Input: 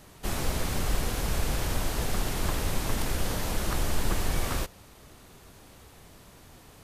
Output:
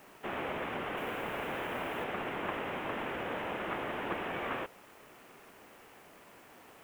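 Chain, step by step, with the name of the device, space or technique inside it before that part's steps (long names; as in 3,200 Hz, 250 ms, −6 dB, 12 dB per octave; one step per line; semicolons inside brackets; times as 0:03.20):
army field radio (band-pass filter 310–3,000 Hz; variable-slope delta modulation 16 kbit/s; white noise bed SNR 26 dB)
0:00.97–0:02.04: high-shelf EQ 7,200 Hz +8.5 dB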